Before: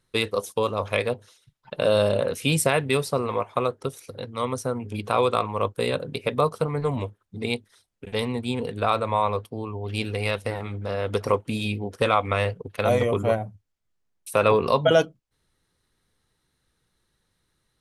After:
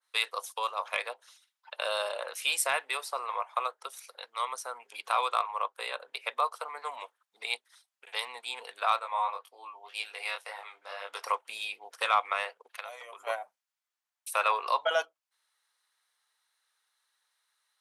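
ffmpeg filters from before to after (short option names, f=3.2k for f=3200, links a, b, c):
-filter_complex "[0:a]asettb=1/sr,asplit=3[a][b][c];[a]atrim=end=5.624[d];[b]atrim=start=5.62:end=6.53,asetpts=PTS-STARTPTS,afade=t=in:d=0.004:c=qsin,afade=t=out:st=0.906:d=0.004:c=qsin,bass=f=250:g=-1,treble=f=4k:g=-4[e];[c]atrim=start=6.526[f];[d][e]acrossfade=d=0.004:c1=hsin:c2=qsin[g];[g][f]acrossfade=d=0.004:c1=qsin:c2=hsin,asettb=1/sr,asplit=3[h][i][j];[h]atrim=end=8.994[k];[i]atrim=start=8.99:end=11.24,asetpts=PTS-STARTPTS,afade=t=in:d=0.004:c=qsin,afade=t=out:st=2.246:d=0.004:c=qsin,flanger=delay=20:depth=3.1:speed=1.9[l];[j]atrim=start=11.236[m];[k][l]acrossfade=d=0.004:c1=hsin:c2=qsin[n];[n][m]acrossfade=d=0.004:c1=qsin:c2=hsin,asettb=1/sr,asplit=3[o][p][q];[o]atrim=end=12.714[r];[p]atrim=start=12.71:end=13.27,asetpts=PTS-STARTPTS,afade=t=in:d=0.004:c=qsin,afade=t=out:st=0.556:d=0.004:c=qsin,acompressor=threshold=-31dB:ratio=6:attack=3.2:release=140:knee=1:detection=peak[s];[q]atrim=start=13.266[t];[r][s]acrossfade=d=0.004:c1=hsin:c2=qsin[u];[u][t]acrossfade=d=0.004:c1=qsin:c2=hsin,highpass=f=800:w=0.5412,highpass=f=800:w=1.3066,acontrast=45,adynamicequalizer=threshold=0.0224:dfrequency=1700:dqfactor=0.7:tfrequency=1700:tqfactor=0.7:attack=5:release=100:ratio=0.375:range=3.5:mode=cutabove:tftype=highshelf,volume=-7dB"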